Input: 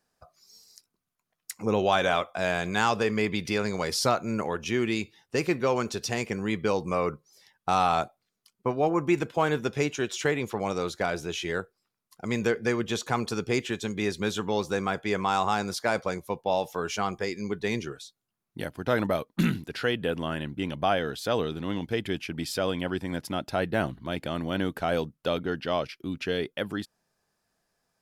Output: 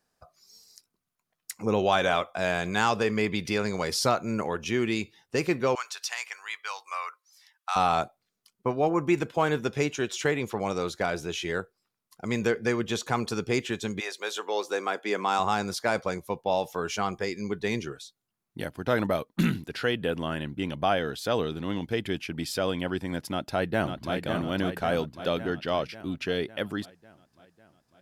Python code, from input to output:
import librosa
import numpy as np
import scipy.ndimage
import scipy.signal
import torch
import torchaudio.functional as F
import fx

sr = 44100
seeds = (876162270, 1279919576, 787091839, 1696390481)

y = fx.highpass(x, sr, hz=1000.0, slope=24, at=(5.75, 7.76))
y = fx.highpass(y, sr, hz=fx.line((13.99, 590.0), (15.38, 200.0)), slope=24, at=(13.99, 15.38), fade=0.02)
y = fx.echo_throw(y, sr, start_s=23.3, length_s=0.85, ms=550, feedback_pct=60, wet_db=-6.0)